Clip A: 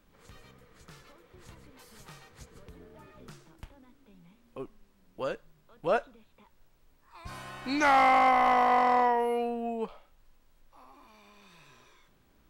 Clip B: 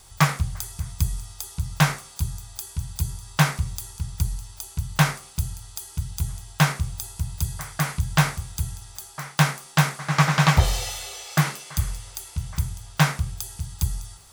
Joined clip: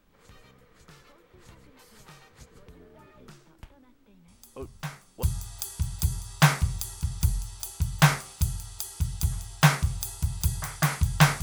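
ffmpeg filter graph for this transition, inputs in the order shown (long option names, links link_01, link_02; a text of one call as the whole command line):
ffmpeg -i cue0.wav -i cue1.wav -filter_complex "[1:a]asplit=2[link_01][link_02];[0:a]apad=whole_dur=11.42,atrim=end=11.42,atrim=end=5.232[link_03];[link_02]atrim=start=2.198:end=8.39[link_04];[link_01]atrim=start=1.25:end=2.2,asetpts=PTS-STARTPTS,volume=-17.5dB,afade=type=in:duration=0.004:curve=hsin,afade=type=out:start_time=0.946:duration=0.004:curve=hsin,adelay=4280[link_05];[link_03][link_04]acrossfade=duration=0.004:curve1=hsin:curve2=hsin[link_06];[link_06][link_05]amix=inputs=2:normalize=0" out.wav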